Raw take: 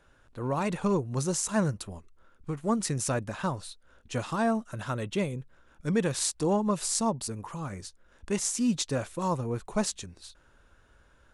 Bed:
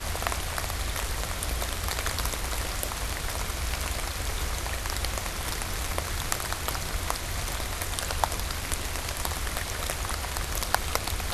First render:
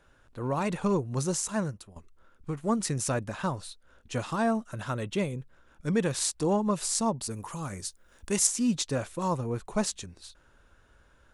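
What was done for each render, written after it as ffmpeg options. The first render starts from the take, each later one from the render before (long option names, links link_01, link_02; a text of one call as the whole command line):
ffmpeg -i in.wav -filter_complex "[0:a]asettb=1/sr,asplit=3[link_01][link_02][link_03];[link_01]atrim=end=7.304[link_04];[link_02]atrim=start=7.3:end=8.47,asetpts=PTS-STARTPTS,afade=type=in:duration=0.004:curve=qsin,afade=type=out:start_time=1.166:duration=0.004:curve=qsin,aemphasis=mode=production:type=50kf[link_05];[link_03]atrim=start=8.466[link_06];[link_04][link_05]acrossfade=duration=0.004:curve1=hsin:curve2=qsin[link_07];[link_07][link_06]acrossfade=duration=0.004:curve1=qsin:curve2=hsin,asplit=2[link_08][link_09];[link_08]atrim=end=1.96,asetpts=PTS-STARTPTS,afade=type=out:start_time=1.33:duration=0.63:silence=0.199526[link_10];[link_09]atrim=start=1.96,asetpts=PTS-STARTPTS,afade=type=in:duration=0.004:curve=hsin:silence=0.199526[link_11];[link_10][link_11]concat=n=2:v=0:a=1" out.wav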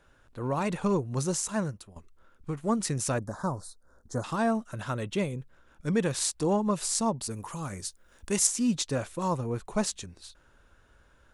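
ffmpeg -i in.wav -filter_complex "[0:a]asettb=1/sr,asplit=3[link_01][link_02][link_03];[link_01]atrim=end=3.184[link_04];[link_02]atrim=start=3.18:end=4.24,asetpts=PTS-STARTPTS,afade=type=in:duration=0.004:curve=qsin,afade=type=out:start_time=1.056:duration=0.004:curve=qsin,asuperstop=centerf=2700:order=4:qfactor=0.7[link_05];[link_03]atrim=start=4.236[link_06];[link_04][link_05]acrossfade=duration=0.004:curve1=hsin:curve2=qsin[link_07];[link_07][link_06]acrossfade=duration=0.004:curve1=qsin:curve2=hsin" out.wav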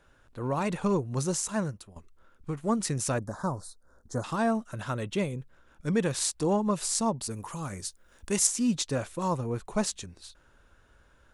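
ffmpeg -i in.wav -af anull out.wav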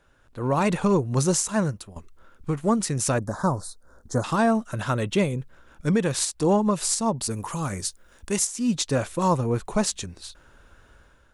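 ffmpeg -i in.wav -af "dynaudnorm=framelen=160:gausssize=5:maxgain=7.5dB,alimiter=limit=-11.5dB:level=0:latency=1:release=252" out.wav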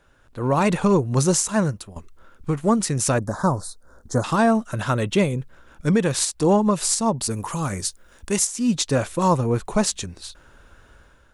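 ffmpeg -i in.wav -af "volume=3dB" out.wav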